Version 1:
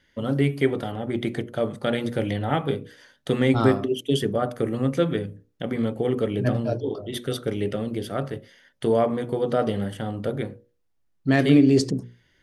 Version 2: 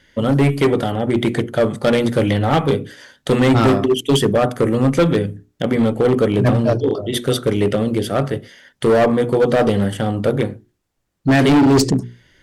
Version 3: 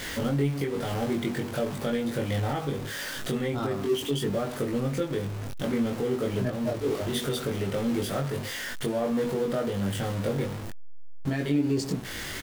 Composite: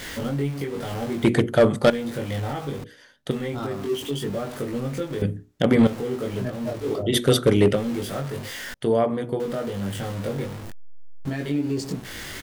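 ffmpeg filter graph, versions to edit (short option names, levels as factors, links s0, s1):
-filter_complex "[1:a]asplit=3[s0][s1][s2];[0:a]asplit=2[s3][s4];[2:a]asplit=6[s5][s6][s7][s8][s9][s10];[s5]atrim=end=1.242[s11];[s0]atrim=start=1.238:end=1.902[s12];[s6]atrim=start=1.898:end=2.842[s13];[s3]atrim=start=2.838:end=3.312[s14];[s7]atrim=start=3.308:end=5.222[s15];[s1]atrim=start=5.218:end=5.872[s16];[s8]atrim=start=5.868:end=7.04[s17];[s2]atrim=start=6.88:end=7.84[s18];[s9]atrim=start=7.68:end=8.742[s19];[s4]atrim=start=8.738:end=9.402[s20];[s10]atrim=start=9.398[s21];[s11][s12]acrossfade=d=0.004:c1=hsin:c2=hsin[s22];[s22][s13]acrossfade=d=0.004:c1=hsin:c2=hsin[s23];[s23][s14]acrossfade=d=0.004:c1=hsin:c2=hsin[s24];[s24][s15]acrossfade=d=0.004:c1=hsin:c2=hsin[s25];[s25][s16]acrossfade=d=0.004:c1=hsin:c2=hsin[s26];[s26][s17]acrossfade=d=0.004:c1=hsin:c2=hsin[s27];[s27][s18]acrossfade=d=0.16:c1=tri:c2=tri[s28];[s28][s19]acrossfade=d=0.16:c1=tri:c2=tri[s29];[s29][s20]acrossfade=d=0.004:c1=hsin:c2=hsin[s30];[s30][s21]acrossfade=d=0.004:c1=hsin:c2=hsin"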